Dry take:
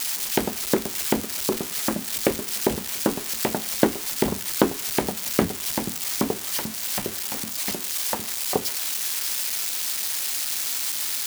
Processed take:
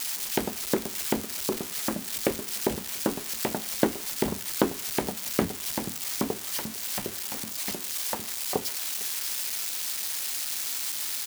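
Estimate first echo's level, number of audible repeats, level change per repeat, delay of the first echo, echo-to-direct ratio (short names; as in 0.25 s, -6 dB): -23.0 dB, 1, no steady repeat, 0.455 s, -23.0 dB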